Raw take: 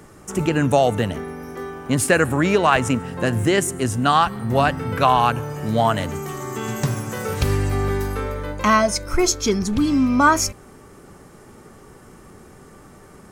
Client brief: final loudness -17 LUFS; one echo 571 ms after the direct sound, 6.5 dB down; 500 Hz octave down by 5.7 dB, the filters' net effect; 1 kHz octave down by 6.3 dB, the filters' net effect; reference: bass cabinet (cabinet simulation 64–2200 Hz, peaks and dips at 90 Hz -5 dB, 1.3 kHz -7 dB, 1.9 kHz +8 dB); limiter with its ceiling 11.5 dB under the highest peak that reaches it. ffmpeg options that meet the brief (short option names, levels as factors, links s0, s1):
-af "equalizer=f=500:t=o:g=-6.5,equalizer=f=1000:t=o:g=-4,alimiter=limit=0.158:level=0:latency=1,highpass=f=64:w=0.5412,highpass=f=64:w=1.3066,equalizer=f=90:t=q:w=4:g=-5,equalizer=f=1300:t=q:w=4:g=-7,equalizer=f=1900:t=q:w=4:g=8,lowpass=f=2200:w=0.5412,lowpass=f=2200:w=1.3066,aecho=1:1:571:0.473,volume=3.16"